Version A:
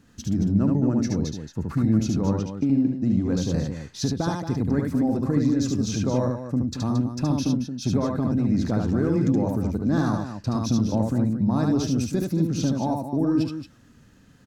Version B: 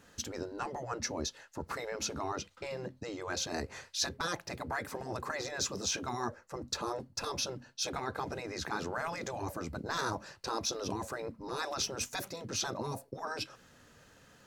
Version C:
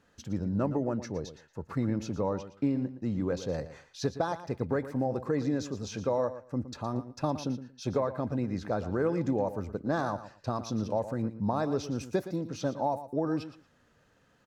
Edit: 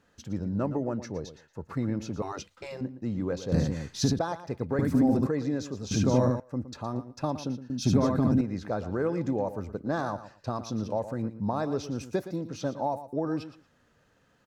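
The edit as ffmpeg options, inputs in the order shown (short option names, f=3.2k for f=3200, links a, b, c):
-filter_complex "[0:a]asplit=4[a][b][c][d];[2:a]asplit=6[e][f][g][h][i][j];[e]atrim=end=2.222[k];[1:a]atrim=start=2.218:end=2.812[l];[f]atrim=start=2.808:end=3.522[m];[a]atrim=start=3.518:end=4.192[n];[g]atrim=start=4.188:end=4.792[o];[b]atrim=start=4.788:end=5.272[p];[h]atrim=start=5.268:end=5.912[q];[c]atrim=start=5.908:end=6.402[r];[i]atrim=start=6.398:end=7.702[s];[d]atrim=start=7.698:end=8.412[t];[j]atrim=start=8.408[u];[k][l]acrossfade=d=0.004:c1=hsin:c2=hsin[v];[v][m]acrossfade=d=0.004:c1=hsin:c2=hsin[w];[w][n]acrossfade=d=0.004:c1=hsin:c2=hsin[x];[x][o]acrossfade=d=0.004:c1=hsin:c2=hsin[y];[y][p]acrossfade=d=0.004:c1=hsin:c2=hsin[z];[z][q]acrossfade=d=0.004:c1=hsin:c2=hsin[aa];[aa][r]acrossfade=d=0.004:c1=hsin:c2=hsin[ab];[ab][s]acrossfade=d=0.004:c1=hsin:c2=hsin[ac];[ac][t]acrossfade=d=0.004:c1=hsin:c2=hsin[ad];[ad][u]acrossfade=d=0.004:c1=hsin:c2=hsin"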